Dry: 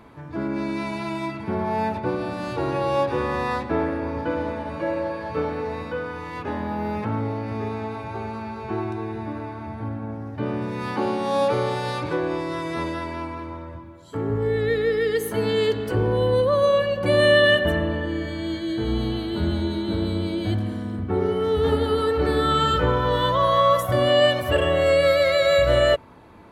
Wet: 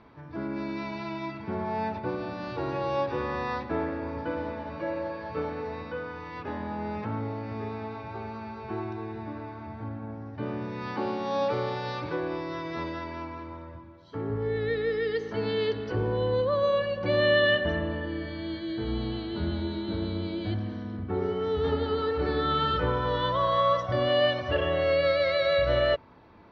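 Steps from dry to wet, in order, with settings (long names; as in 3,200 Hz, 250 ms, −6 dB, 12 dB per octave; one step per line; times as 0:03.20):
Chebyshev low-pass filter 5,800 Hz, order 6
level −5.5 dB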